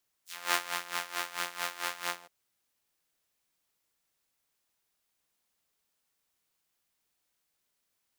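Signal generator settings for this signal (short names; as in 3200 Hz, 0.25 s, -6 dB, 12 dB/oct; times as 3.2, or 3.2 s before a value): synth patch with tremolo F3, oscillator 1 saw, sub -8 dB, noise -19 dB, filter highpass, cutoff 610 Hz, Q 0.96, filter envelope 4 oct, filter decay 0.12 s, filter sustain 25%, attack 0.313 s, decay 0.14 s, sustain -7 dB, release 0.18 s, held 1.85 s, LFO 4.5 Hz, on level 16.5 dB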